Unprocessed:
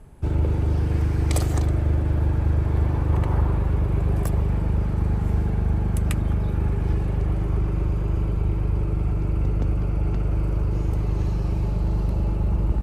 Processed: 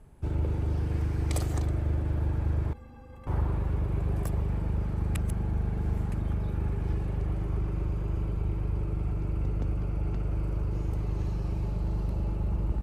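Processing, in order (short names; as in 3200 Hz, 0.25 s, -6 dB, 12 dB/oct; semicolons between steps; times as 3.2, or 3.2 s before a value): 2.73–3.27 metallic resonator 240 Hz, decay 0.21 s, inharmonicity 0.03; 5.15–6.12 reverse; gain -7 dB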